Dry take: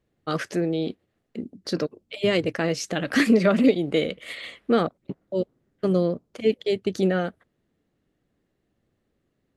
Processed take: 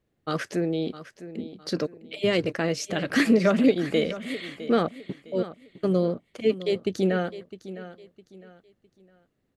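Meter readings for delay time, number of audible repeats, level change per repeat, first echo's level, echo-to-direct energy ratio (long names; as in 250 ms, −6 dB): 658 ms, 3, −10.0 dB, −14.5 dB, −14.0 dB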